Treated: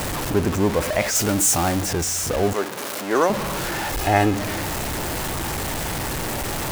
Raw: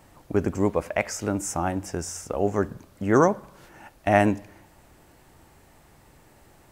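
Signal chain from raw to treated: zero-crossing step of -20.5 dBFS; 1.15–1.82 high shelf 4900 Hz +8 dB; 2.53–3.3 HPF 400 Hz 12 dB/oct; 3.93–4.35 comb 2.4 ms, depth 56%

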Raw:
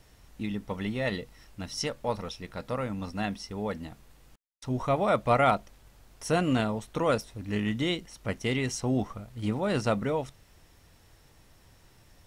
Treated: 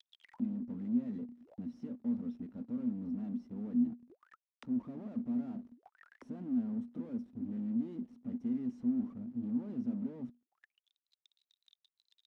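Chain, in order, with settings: fuzz box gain 48 dB, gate -49 dBFS; auto-wah 240–4300 Hz, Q 22, down, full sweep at -22.5 dBFS; gain -5.5 dB

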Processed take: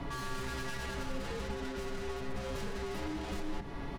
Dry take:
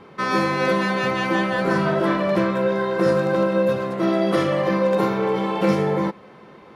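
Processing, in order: tube stage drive 32 dB, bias 0.3; comb 7.2 ms, depth 71%; reverb, pre-delay 6 ms, DRR 12.5 dB; time stretch by phase-locked vocoder 0.59×; compressor, threshold -38 dBFS, peak gain reduction 10.5 dB; limiter -35 dBFS, peak gain reduction 7 dB; frequency shift -130 Hz; tone controls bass +8 dB, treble +5 dB; notches 50/100/150/200/250/300/350/400 Hz; echo 0.121 s -13.5 dB; gain +3 dB

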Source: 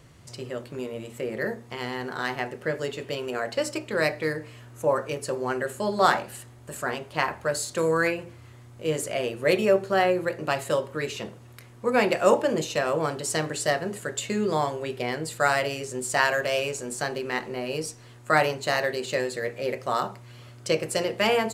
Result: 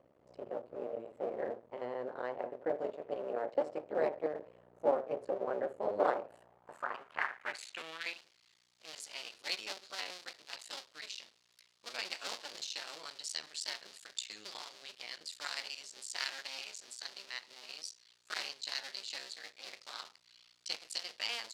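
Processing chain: cycle switcher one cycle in 2, muted; band-pass sweep 550 Hz -> 4500 Hz, 6.22–8.23

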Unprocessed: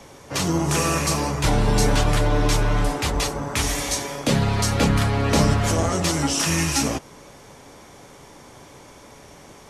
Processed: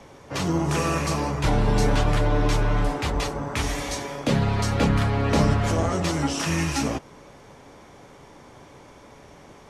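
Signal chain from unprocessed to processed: high shelf 5200 Hz -11.5 dB; gain -1.5 dB

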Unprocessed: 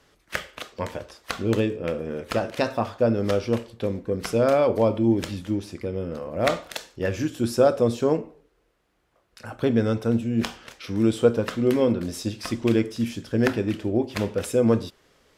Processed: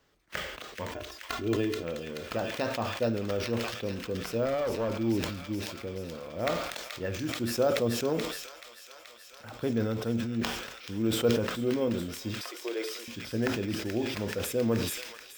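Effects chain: 0.91–1.83 comb 2.9 ms, depth 74%; 12.41–13.08 steep high-pass 370 Hz 48 dB/oct; thin delay 0.43 s, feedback 80%, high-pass 2100 Hz, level -4 dB; careless resampling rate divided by 2×, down filtered, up hold; 4.45–4.97 one-sided clip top -20 dBFS; sustainer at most 51 dB/s; gain -8.5 dB

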